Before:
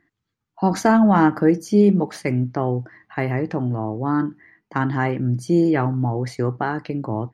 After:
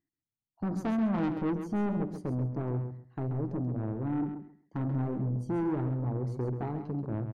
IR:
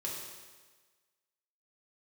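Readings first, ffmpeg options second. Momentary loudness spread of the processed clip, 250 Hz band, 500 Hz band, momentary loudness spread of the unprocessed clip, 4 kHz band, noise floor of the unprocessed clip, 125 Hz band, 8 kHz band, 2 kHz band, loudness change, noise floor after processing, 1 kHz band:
6 LU, −12.0 dB, −14.5 dB, 10 LU, below −15 dB, −79 dBFS, −8.5 dB, can't be measured, −20.0 dB, −12.0 dB, below −85 dBFS, −17.0 dB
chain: -filter_complex "[0:a]bandreject=frequency=60:width_type=h:width=6,bandreject=frequency=120:width_type=h:width=6,bandreject=frequency=180:width_type=h:width=6,bandreject=frequency=240:width_type=h:width=6,bandreject=frequency=300:width_type=h:width=6,bandreject=frequency=360:width_type=h:width=6,afwtdn=0.0708,equalizer=frequency=1700:width_type=o:width=2.8:gain=-14,asplit=2[link_01][link_02];[link_02]acompressor=threshold=-29dB:ratio=6,volume=-3dB[link_03];[link_01][link_03]amix=inputs=2:normalize=0,asoftclip=type=tanh:threshold=-21.5dB,asplit=2[link_04][link_05];[link_05]aecho=0:1:134|268|402:0.376|0.0714|0.0136[link_06];[link_04][link_06]amix=inputs=2:normalize=0,volume=-5.5dB"

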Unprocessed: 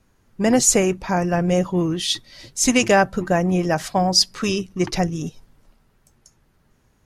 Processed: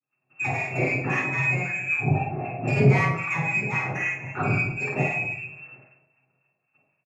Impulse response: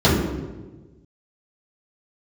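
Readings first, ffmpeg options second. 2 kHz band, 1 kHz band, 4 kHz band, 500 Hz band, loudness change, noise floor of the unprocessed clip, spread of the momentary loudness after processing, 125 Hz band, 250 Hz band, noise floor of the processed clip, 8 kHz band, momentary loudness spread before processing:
+3.5 dB, −6.0 dB, −25.0 dB, −9.0 dB, −5.0 dB, −62 dBFS, 9 LU, +1.5 dB, −9.5 dB, −77 dBFS, −26.0 dB, 9 LU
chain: -filter_complex "[0:a]lowpass=frequency=2300:width_type=q:width=0.5098,lowpass=frequency=2300:width_type=q:width=0.6013,lowpass=frequency=2300:width_type=q:width=0.9,lowpass=frequency=2300:width_type=q:width=2.563,afreqshift=-2700,agate=range=-36dB:threshold=-56dB:ratio=16:detection=peak,equalizer=frequency=130:width=6.6:gain=12.5,acompressor=threshold=-33dB:ratio=2.5,aemphasis=mode=reproduction:type=riaa,asoftclip=type=tanh:threshold=-27dB,aecho=1:1:50|105|165.5|232|305.3:0.631|0.398|0.251|0.158|0.1[link_01];[1:a]atrim=start_sample=2205,afade=type=out:start_time=0.28:duration=0.01,atrim=end_sample=12789,asetrate=83790,aresample=44100[link_02];[link_01][link_02]afir=irnorm=-1:irlink=0,acrossover=split=930[link_03][link_04];[link_03]aeval=exprs='val(0)*(1-0.5/2+0.5/2*cos(2*PI*3.8*n/s))':channel_layout=same[link_05];[link_04]aeval=exprs='val(0)*(1-0.5/2-0.5/2*cos(2*PI*3.8*n/s))':channel_layout=same[link_06];[link_05][link_06]amix=inputs=2:normalize=0,volume=-8.5dB"

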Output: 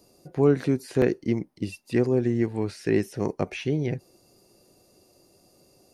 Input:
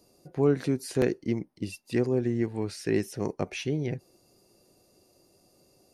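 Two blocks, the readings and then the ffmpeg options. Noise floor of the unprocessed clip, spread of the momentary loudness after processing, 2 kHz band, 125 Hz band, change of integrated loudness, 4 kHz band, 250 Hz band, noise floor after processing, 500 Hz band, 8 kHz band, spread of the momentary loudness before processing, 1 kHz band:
−64 dBFS, 10 LU, +3.0 dB, +3.5 dB, +3.5 dB, −0.5 dB, +3.5 dB, −61 dBFS, +3.5 dB, −3.0 dB, 9 LU, +3.5 dB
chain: -filter_complex "[0:a]acrossover=split=3100[link_01][link_02];[link_02]acompressor=threshold=-47dB:ratio=4:attack=1:release=60[link_03];[link_01][link_03]amix=inputs=2:normalize=0,volume=3.5dB"

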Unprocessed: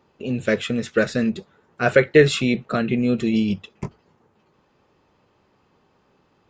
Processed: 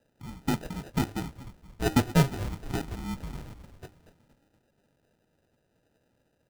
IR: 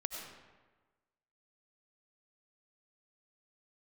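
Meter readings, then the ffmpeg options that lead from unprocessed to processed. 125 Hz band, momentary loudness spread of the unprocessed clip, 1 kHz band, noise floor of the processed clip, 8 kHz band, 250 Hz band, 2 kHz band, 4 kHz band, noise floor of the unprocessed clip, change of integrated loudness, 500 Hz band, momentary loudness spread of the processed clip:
−3.0 dB, 16 LU, −4.5 dB, −73 dBFS, −3.5 dB, −9.5 dB, −15.0 dB, −9.5 dB, −63 dBFS, −9.5 dB, −17.0 dB, 23 LU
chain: -filter_complex "[0:a]bandreject=frequency=299:width_type=h:width=4,bandreject=frequency=598:width_type=h:width=4,bandreject=frequency=897:width_type=h:width=4,bandreject=frequency=1196:width_type=h:width=4,bandreject=frequency=1495:width_type=h:width=4,bandreject=frequency=1794:width_type=h:width=4,bandreject=frequency=2093:width_type=h:width=4,bandreject=frequency=2392:width_type=h:width=4,bandreject=frequency=2691:width_type=h:width=4,bandreject=frequency=2990:width_type=h:width=4,bandreject=frequency=3289:width_type=h:width=4,bandreject=frequency=3588:width_type=h:width=4,bandreject=frequency=3887:width_type=h:width=4,bandreject=frequency=4186:width_type=h:width=4,bandreject=frequency=4485:width_type=h:width=4,bandreject=frequency=4784:width_type=h:width=4,bandreject=frequency=5083:width_type=h:width=4,bandreject=frequency=5382:width_type=h:width=4,bandreject=frequency=5681:width_type=h:width=4,bandreject=frequency=5980:width_type=h:width=4,bandreject=frequency=6279:width_type=h:width=4,bandreject=frequency=6578:width_type=h:width=4,bandreject=frequency=6877:width_type=h:width=4,bandreject=frequency=7176:width_type=h:width=4,bandreject=frequency=7475:width_type=h:width=4,bandreject=frequency=7774:width_type=h:width=4,bandreject=frequency=8073:width_type=h:width=4,bandreject=frequency=8372:width_type=h:width=4,bandreject=frequency=8671:width_type=h:width=4,bandreject=frequency=8970:width_type=h:width=4,bandreject=frequency=9269:width_type=h:width=4,bandreject=frequency=9568:width_type=h:width=4,bandreject=frequency=9867:width_type=h:width=4,bandreject=frequency=10166:width_type=h:width=4,bandreject=frequency=10465:width_type=h:width=4,bandreject=frequency=10764:width_type=h:width=4,bandreject=frequency=11063:width_type=h:width=4,bandreject=frequency=11362:width_type=h:width=4,bandreject=frequency=11661:width_type=h:width=4,bandreject=frequency=11960:width_type=h:width=4,highpass=frequency=420:width_type=q:width=0.5412,highpass=frequency=420:width_type=q:width=1.307,lowpass=frequency=2800:width_type=q:width=0.5176,lowpass=frequency=2800:width_type=q:width=0.7071,lowpass=frequency=2800:width_type=q:width=1.932,afreqshift=-290,asplit=6[link_01][link_02][link_03][link_04][link_05][link_06];[link_02]adelay=236,afreqshift=-72,volume=-13.5dB[link_07];[link_03]adelay=472,afreqshift=-144,volume=-19.3dB[link_08];[link_04]adelay=708,afreqshift=-216,volume=-25.2dB[link_09];[link_05]adelay=944,afreqshift=-288,volume=-31dB[link_10];[link_06]adelay=1180,afreqshift=-360,volume=-36.9dB[link_11];[link_01][link_07][link_08][link_09][link_10][link_11]amix=inputs=6:normalize=0,acrusher=samples=40:mix=1:aa=0.000001,volume=-6dB"

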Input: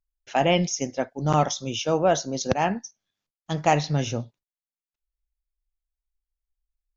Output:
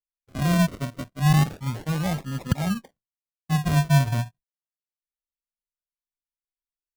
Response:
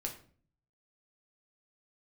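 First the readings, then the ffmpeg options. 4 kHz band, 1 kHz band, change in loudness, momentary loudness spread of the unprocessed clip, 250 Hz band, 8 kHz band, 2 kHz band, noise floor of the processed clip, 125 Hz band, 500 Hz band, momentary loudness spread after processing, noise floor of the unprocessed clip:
−4.0 dB, −6.5 dB, +0.5 dB, 11 LU, +3.0 dB, can't be measured, −0.5 dB, below −85 dBFS, +7.0 dB, −10.5 dB, 12 LU, below −85 dBFS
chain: -af "agate=range=-33dB:threshold=-45dB:ratio=3:detection=peak,firequalizer=gain_entry='entry(160,0);entry(370,-22);entry(900,-18)':delay=0.05:min_phase=1,acrusher=samples=41:mix=1:aa=0.000001:lfo=1:lforange=24.6:lforate=0.31,volume=7.5dB"

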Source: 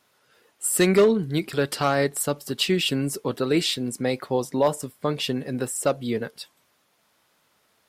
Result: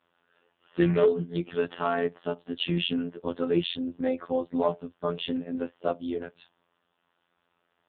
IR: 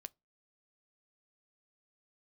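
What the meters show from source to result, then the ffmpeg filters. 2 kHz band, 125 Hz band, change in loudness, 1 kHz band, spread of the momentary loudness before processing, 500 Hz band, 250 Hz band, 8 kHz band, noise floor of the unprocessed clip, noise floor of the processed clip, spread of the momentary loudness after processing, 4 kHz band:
−7.5 dB, −5.0 dB, −5.0 dB, −5.0 dB, 10 LU, −4.5 dB, −3.5 dB, below −40 dB, −67 dBFS, −76 dBFS, 10 LU, −7.0 dB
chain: -af "afftfilt=real='hypot(re,im)*cos(PI*b)':imag='0':win_size=2048:overlap=0.75,bandreject=frequency=2200:width=5.4" -ar 8000 -c:a libopencore_amrnb -b:a 5900

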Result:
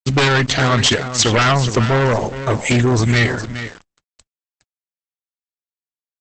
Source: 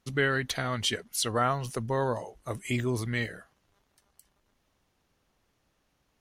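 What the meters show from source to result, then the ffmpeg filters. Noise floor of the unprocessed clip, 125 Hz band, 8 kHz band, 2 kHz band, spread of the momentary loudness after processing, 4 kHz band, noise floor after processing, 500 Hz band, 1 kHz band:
−75 dBFS, +17.0 dB, +14.5 dB, +13.5 dB, 9 LU, +15.0 dB, below −85 dBFS, +12.5 dB, +12.5 dB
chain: -af "aeval=exprs='0.237*sin(PI/2*3.98*val(0)/0.237)':channel_layout=same,aecho=1:1:415:0.299,aeval=exprs='val(0)*gte(abs(val(0)),0.02)':channel_layout=same,volume=3.5dB" -ar 48000 -c:a libopus -b:a 10k

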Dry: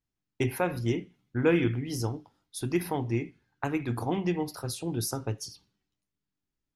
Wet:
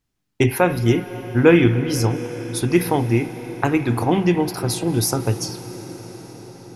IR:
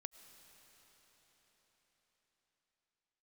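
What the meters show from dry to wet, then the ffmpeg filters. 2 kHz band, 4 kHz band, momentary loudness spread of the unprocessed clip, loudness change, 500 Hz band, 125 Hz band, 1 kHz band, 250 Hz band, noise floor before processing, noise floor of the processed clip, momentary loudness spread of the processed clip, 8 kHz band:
+11.5 dB, +11.5 dB, 11 LU, +11.0 dB, +11.5 dB, +11.5 dB, +11.5 dB, +11.5 dB, below −85 dBFS, −74 dBFS, 19 LU, +11.5 dB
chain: -filter_complex "[0:a]asplit=2[link_01][link_02];[1:a]atrim=start_sample=2205,asetrate=26901,aresample=44100[link_03];[link_02][link_03]afir=irnorm=-1:irlink=0,volume=7.5dB[link_04];[link_01][link_04]amix=inputs=2:normalize=0,volume=2.5dB"

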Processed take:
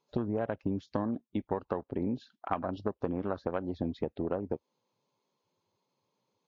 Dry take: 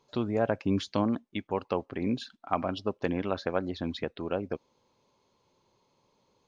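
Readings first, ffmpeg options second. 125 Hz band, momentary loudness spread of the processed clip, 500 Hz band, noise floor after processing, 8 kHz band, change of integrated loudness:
−2.5 dB, 3 LU, −3.0 dB, −84 dBFS, can't be measured, −3.5 dB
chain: -af "afwtdn=0.0141,acompressor=threshold=-34dB:ratio=12,volume=6dB" -ar 16000 -c:a libvorbis -b:a 48k

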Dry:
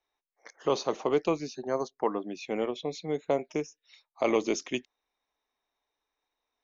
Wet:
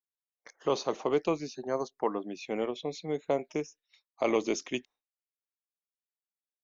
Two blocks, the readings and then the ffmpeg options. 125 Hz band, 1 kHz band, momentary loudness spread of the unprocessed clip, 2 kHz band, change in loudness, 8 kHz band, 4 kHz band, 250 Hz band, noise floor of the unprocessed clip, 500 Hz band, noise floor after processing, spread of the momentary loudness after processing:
−1.5 dB, −1.5 dB, 8 LU, −1.5 dB, −1.5 dB, can't be measured, −1.5 dB, −1.5 dB, below −85 dBFS, −1.5 dB, below −85 dBFS, 8 LU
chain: -af "agate=range=-33dB:threshold=-50dB:ratio=3:detection=peak,volume=-1.5dB"

